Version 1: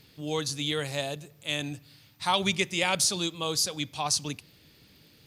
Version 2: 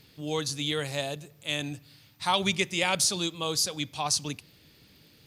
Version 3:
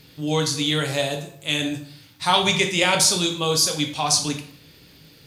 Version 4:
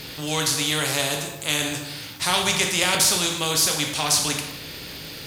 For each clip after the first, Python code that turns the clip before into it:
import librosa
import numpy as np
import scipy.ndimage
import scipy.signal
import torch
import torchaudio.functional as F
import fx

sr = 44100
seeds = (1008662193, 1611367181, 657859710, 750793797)

y1 = x
y2 = fx.rev_plate(y1, sr, seeds[0], rt60_s=0.59, hf_ratio=0.75, predelay_ms=0, drr_db=3.0)
y2 = F.gain(torch.from_numpy(y2), 6.0).numpy()
y3 = fx.spectral_comp(y2, sr, ratio=2.0)